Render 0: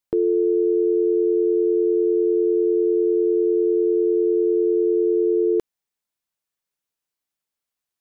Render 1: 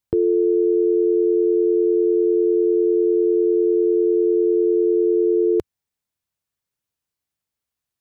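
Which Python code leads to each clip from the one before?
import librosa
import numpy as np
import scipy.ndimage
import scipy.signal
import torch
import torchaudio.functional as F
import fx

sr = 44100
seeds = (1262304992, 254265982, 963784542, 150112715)

y = fx.peak_eq(x, sr, hz=86.0, db=12.5, octaves=1.9)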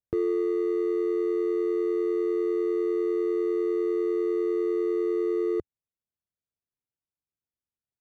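y = scipy.signal.medfilt(x, 41)
y = fx.rider(y, sr, range_db=10, speed_s=0.5)
y = y * 10.0 ** (-8.0 / 20.0)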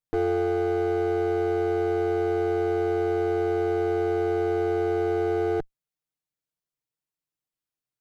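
y = fx.lower_of_two(x, sr, delay_ms=6.5)
y = y * 10.0 ** (3.0 / 20.0)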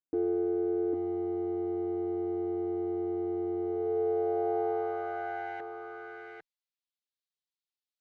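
y = fx.filter_sweep_bandpass(x, sr, from_hz=300.0, to_hz=3900.0, start_s=3.57, end_s=6.3, q=2.4)
y = y + 10.0 ** (-4.0 / 20.0) * np.pad(y, (int(801 * sr / 1000.0), 0))[:len(y)]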